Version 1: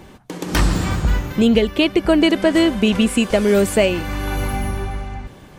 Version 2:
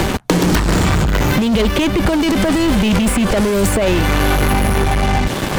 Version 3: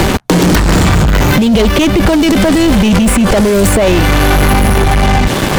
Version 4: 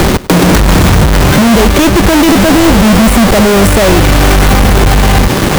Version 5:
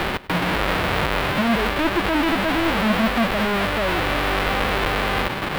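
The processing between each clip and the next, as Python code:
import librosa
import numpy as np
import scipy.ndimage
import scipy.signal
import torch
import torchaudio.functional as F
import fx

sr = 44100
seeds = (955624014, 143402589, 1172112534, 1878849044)

y1 = fx.over_compress(x, sr, threshold_db=-17.0, ratio=-0.5)
y1 = fx.leveller(y1, sr, passes=5)
y1 = fx.band_squash(y1, sr, depth_pct=100)
y1 = y1 * 10.0 ** (-7.0 / 20.0)
y2 = fx.leveller(y1, sr, passes=2)
y3 = fx.halfwave_hold(y2, sr)
y3 = fx.echo_feedback(y3, sr, ms=100, feedback_pct=35, wet_db=-19.0)
y3 = y3 * 10.0 ** (-1.0 / 20.0)
y4 = fx.envelope_flatten(y3, sr, power=0.1)
y4 = fx.air_absorb(y4, sr, metres=490.0)
y4 = y4 * 10.0 ** (-6.5 / 20.0)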